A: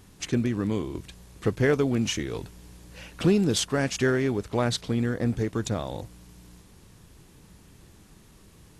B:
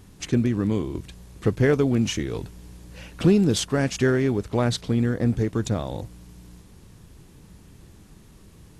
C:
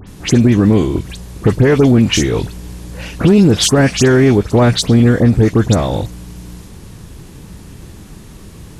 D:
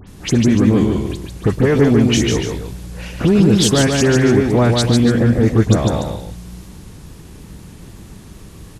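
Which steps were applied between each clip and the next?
low shelf 420 Hz +5 dB
in parallel at -6 dB: one-sided clip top -22 dBFS; on the sum: dispersion highs, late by 74 ms, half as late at 2800 Hz; maximiser +11.5 dB; gain -1 dB
on a send: loudspeakers at several distances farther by 51 m -4 dB, 99 m -11 dB; on the sum: wow and flutter 29 cents; gain -4 dB

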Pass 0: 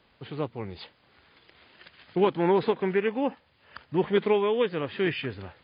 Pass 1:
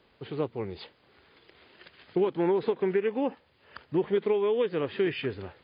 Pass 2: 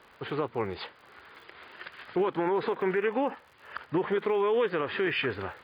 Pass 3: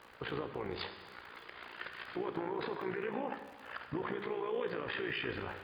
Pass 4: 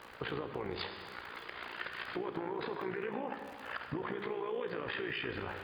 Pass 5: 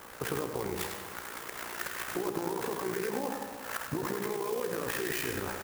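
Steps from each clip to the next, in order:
bell 400 Hz +6.5 dB 0.76 oct; compressor 6:1, threshold -21 dBFS, peak gain reduction 9 dB; gain -1.5 dB
bell 1300 Hz +13 dB 2 oct; limiter -18.5 dBFS, peak gain reduction 9 dB; crackle 57/s -48 dBFS
limiter -29.5 dBFS, peak gain reduction 11 dB; AM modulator 59 Hz, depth 60%; non-linear reverb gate 0.47 s falling, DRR 7.5 dB; gain +2.5 dB
compressor 3:1, threshold -41 dBFS, peak gain reduction 7.5 dB; gain +5 dB
echo 0.1 s -7 dB; clock jitter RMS 0.063 ms; gain +4 dB

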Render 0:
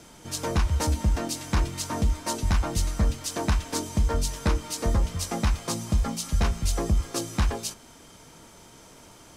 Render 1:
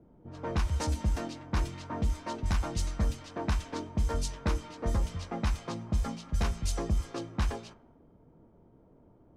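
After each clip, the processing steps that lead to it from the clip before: low-pass opened by the level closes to 440 Hz, open at -19 dBFS; gain -5.5 dB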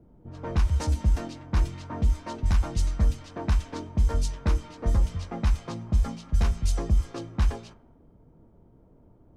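low shelf 120 Hz +8.5 dB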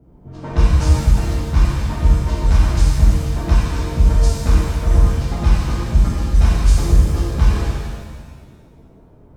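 shimmer reverb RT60 1.6 s, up +7 st, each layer -8 dB, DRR -7 dB; gain +2 dB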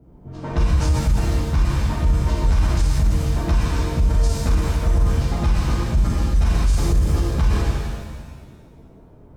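limiter -10 dBFS, peak gain reduction 8.5 dB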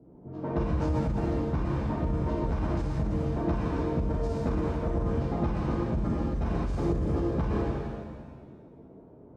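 band-pass 380 Hz, Q 0.74

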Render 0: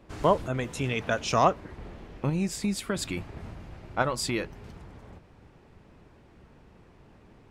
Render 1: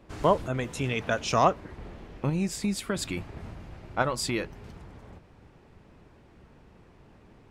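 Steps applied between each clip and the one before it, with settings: nothing audible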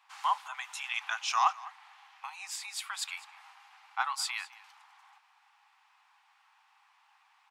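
rippled Chebyshev high-pass 780 Hz, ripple 3 dB; echo 0.206 s -19.5 dB

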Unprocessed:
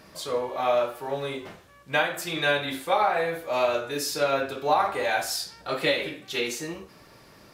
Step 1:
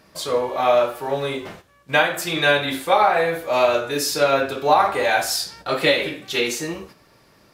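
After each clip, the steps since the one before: gate -48 dBFS, range -9 dB; gain +6.5 dB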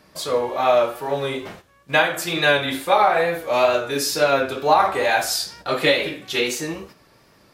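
wow and flutter 46 cents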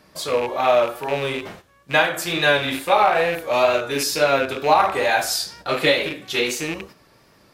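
rattling part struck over -35 dBFS, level -19 dBFS

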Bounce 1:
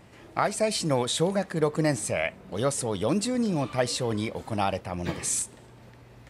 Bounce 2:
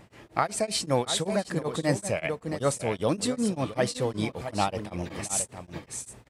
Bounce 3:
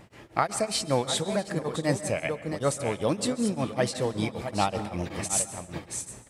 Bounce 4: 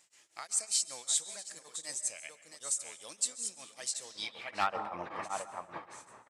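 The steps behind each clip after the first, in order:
on a send: echo 0.672 s -9 dB; on the sum: beating tremolo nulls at 5.2 Hz; gain +1.5 dB
vocal rider within 3 dB 2 s; plate-style reverb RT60 0.86 s, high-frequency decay 0.6×, pre-delay 0.12 s, DRR 13.5 dB
band-pass sweep 7400 Hz -> 1100 Hz, 4.02–4.79; hard clip -24 dBFS, distortion -24 dB; downsampling 32000 Hz; gain +5 dB

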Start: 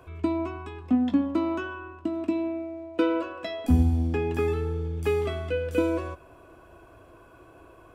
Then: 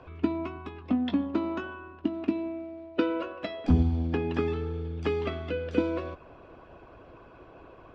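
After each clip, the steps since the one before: LPF 4600 Hz 24 dB/oct; harmonic-percussive split harmonic -11 dB; gain +6.5 dB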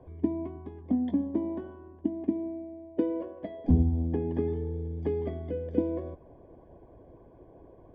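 running mean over 33 samples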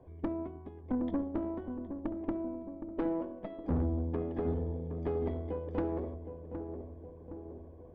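tube stage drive 27 dB, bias 0.75; darkening echo 0.766 s, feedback 61%, low-pass 950 Hz, level -7.5 dB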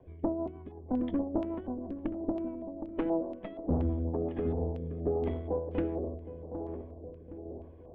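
LFO low-pass square 2.1 Hz 760–2900 Hz; rotary speaker horn 6.3 Hz, later 0.85 Hz, at 3.92; gain +2.5 dB

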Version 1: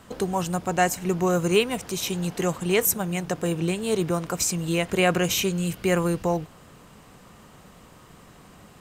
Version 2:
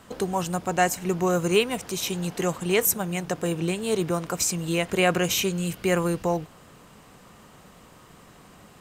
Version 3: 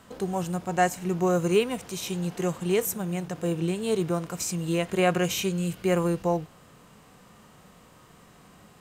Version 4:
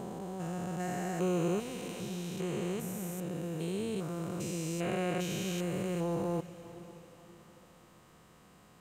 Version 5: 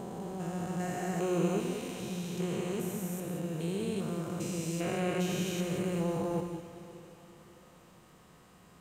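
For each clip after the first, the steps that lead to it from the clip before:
low shelf 170 Hz -3.5 dB
harmonic-percussive split percussive -9 dB
stepped spectrum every 0.4 s; diffused feedback echo 0.544 s, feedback 41%, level -16 dB; gain -5 dB
non-linear reverb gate 0.22 s rising, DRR 5.5 dB

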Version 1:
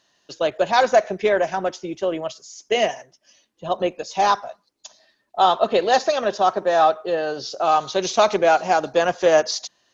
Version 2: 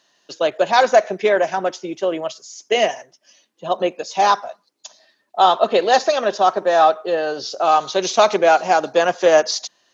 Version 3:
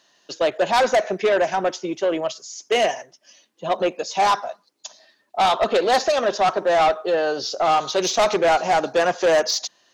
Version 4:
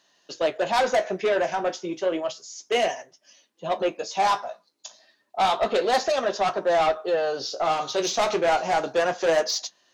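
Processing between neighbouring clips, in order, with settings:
Bessel high-pass 210 Hz, order 2; gain +3 dB
soft clip -14.5 dBFS, distortion -10 dB; gain +1.5 dB
flange 0.31 Hz, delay 10 ms, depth 9.1 ms, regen -48%

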